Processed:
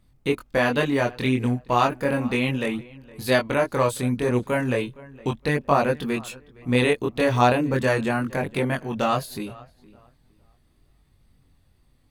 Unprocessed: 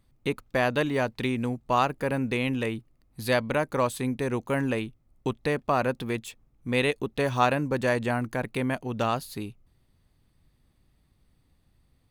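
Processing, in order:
feedback echo with a low-pass in the loop 463 ms, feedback 26%, low-pass 3,300 Hz, level −21.5 dB
multi-voice chorus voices 2, 0.35 Hz, delay 23 ms, depth 2.1 ms
tape wow and flutter 20 cents
level +7 dB

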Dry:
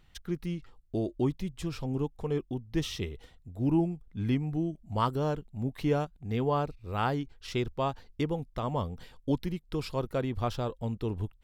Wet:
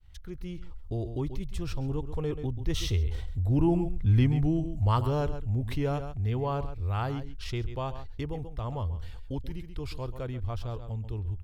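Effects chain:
fade in at the beginning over 0.81 s
source passing by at 0:04.05, 10 m/s, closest 4.6 metres
low shelf with overshoot 120 Hz +13 dB, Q 1.5
notch filter 7,200 Hz, Q 27
on a send: single-tap delay 135 ms −15.5 dB
on the sum: envelope flattener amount 50%
level +2 dB

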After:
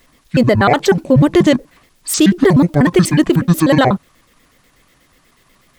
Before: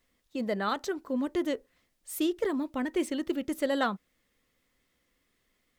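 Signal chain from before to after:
pitch shifter gated in a rhythm −10 semitones, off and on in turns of 61 ms
boost into a limiter +22.5 dB
level −1 dB

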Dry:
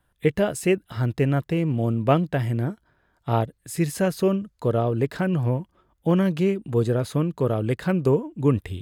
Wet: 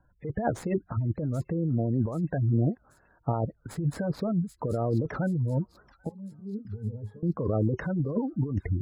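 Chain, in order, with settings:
running median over 15 samples
notch filter 380 Hz, Q 12
gate on every frequency bin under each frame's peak −20 dB strong
0:02.43–0:03.36: low-shelf EQ 330 Hz −3 dB
compressor whose output falls as the input rises −27 dBFS, ratio −1
0:06.09–0:07.23: resonances in every octave G#, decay 0.16 s
delay with a high-pass on its return 782 ms, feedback 49%, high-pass 4,200 Hz, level −6.5 dB
wow of a warped record 78 rpm, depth 250 cents

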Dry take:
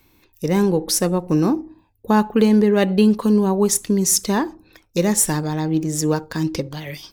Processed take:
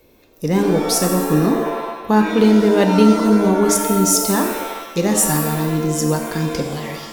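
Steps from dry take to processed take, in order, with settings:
noise in a band 220–580 Hz −57 dBFS
reverb with rising layers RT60 1 s, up +7 semitones, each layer −2 dB, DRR 4.5 dB

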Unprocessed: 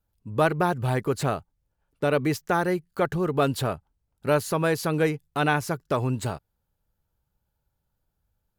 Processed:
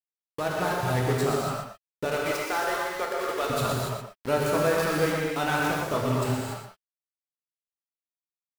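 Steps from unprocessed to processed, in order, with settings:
fade in at the beginning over 0.82 s
0:02.05–0:03.50: Bessel high-pass filter 510 Hz, order 6
reverb reduction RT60 1.8 s
in parallel at −1 dB: brickwall limiter −21.5 dBFS, peak gain reduction 11 dB
on the sum: centre clipping without the shift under −26 dBFS
on a send: single-tap delay 120 ms −8 dB
on the sum: reverb whose tail is shaped and stops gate 310 ms flat, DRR −3.5 dB
level −7.5 dB

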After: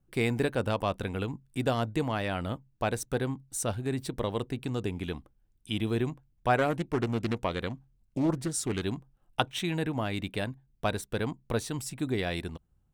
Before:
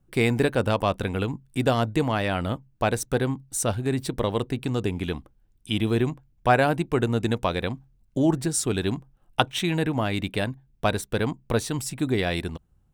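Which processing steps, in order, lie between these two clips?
0:06.57–0:08.82: highs frequency-modulated by the lows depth 0.4 ms
level −6 dB

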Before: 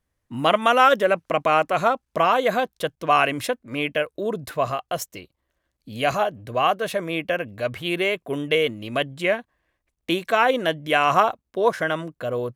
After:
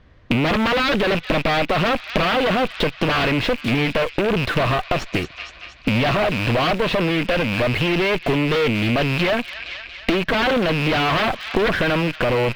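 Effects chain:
loose part that buzzes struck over −41 dBFS, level −23 dBFS
sine wavefolder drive 15 dB, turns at −3 dBFS
notch filter 840 Hz, Q 12
asymmetric clip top −24 dBFS, bottom −7 dBFS
low-pass filter 4,100 Hz 24 dB per octave
delay with a high-pass on its return 233 ms, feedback 57%, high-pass 1,900 Hz, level −13.5 dB
in parallel at −11 dB: bit reduction 4 bits
on the sum: downward compressor 6 to 1, threshold −25 dBFS, peak gain reduction 14.5 dB
low-shelf EQ 450 Hz +3 dB
highs frequency-modulated by the lows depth 0.22 ms
level +5.5 dB

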